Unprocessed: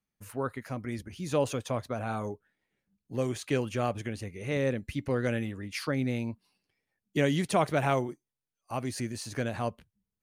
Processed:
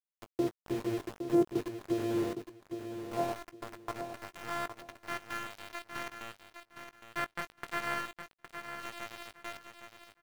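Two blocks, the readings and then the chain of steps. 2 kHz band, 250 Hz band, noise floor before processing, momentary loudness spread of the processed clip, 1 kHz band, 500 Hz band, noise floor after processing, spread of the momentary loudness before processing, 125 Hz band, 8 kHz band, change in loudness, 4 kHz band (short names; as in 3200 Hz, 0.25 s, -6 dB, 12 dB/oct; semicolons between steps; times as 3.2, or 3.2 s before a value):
-3.0 dB, -3.0 dB, under -85 dBFS, 15 LU, -4.5 dB, -6.0 dB, under -85 dBFS, 11 LU, -14.0 dB, -8.0 dB, -5.5 dB, -5.0 dB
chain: sample sorter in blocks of 128 samples; LPF 3700 Hz 24 dB/oct; low shelf 330 Hz +11.5 dB; notches 50/100/150/200/250 Hz; in parallel at -2 dB: compressor 10:1, threshold -30 dBFS, peak gain reduction 14.5 dB; on the sum: step gate ".x.x.xxxx" 116 bpm; band-pass sweep 390 Hz -> 1600 Hz, 1.95–5.07; sample gate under -37.5 dBFS; doubler 19 ms -13 dB; feedback echo 0.812 s, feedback 22%, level -8.5 dB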